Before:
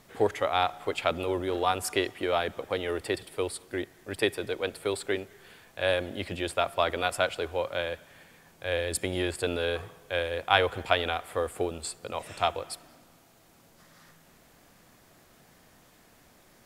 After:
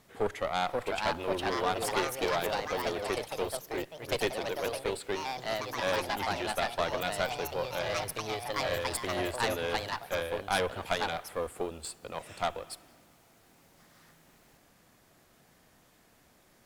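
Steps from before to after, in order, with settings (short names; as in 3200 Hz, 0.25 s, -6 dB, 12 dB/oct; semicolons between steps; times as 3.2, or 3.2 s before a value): echoes that change speed 0.566 s, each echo +3 st, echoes 3; tube stage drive 21 dB, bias 0.75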